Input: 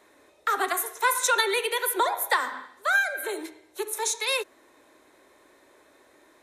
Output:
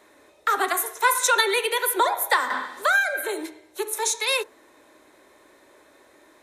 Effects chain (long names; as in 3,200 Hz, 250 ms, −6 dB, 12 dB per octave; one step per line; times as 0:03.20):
convolution reverb, pre-delay 3 ms, DRR 17.5 dB
0:02.50–0:03.22: multiband upward and downward compressor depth 70%
level +3 dB